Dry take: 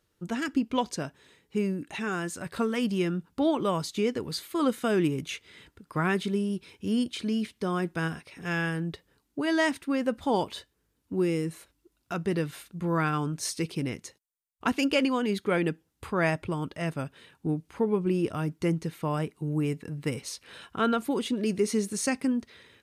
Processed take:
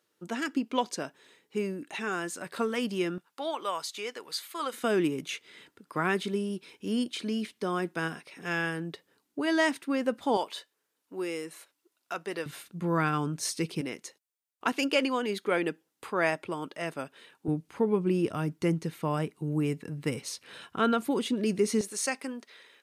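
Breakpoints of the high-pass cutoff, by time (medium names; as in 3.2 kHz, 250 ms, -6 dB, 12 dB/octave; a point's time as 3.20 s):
270 Hz
from 3.18 s 780 Hz
from 4.73 s 230 Hz
from 10.37 s 520 Hz
from 12.46 s 130 Hz
from 13.81 s 310 Hz
from 17.48 s 120 Hz
from 21.81 s 490 Hz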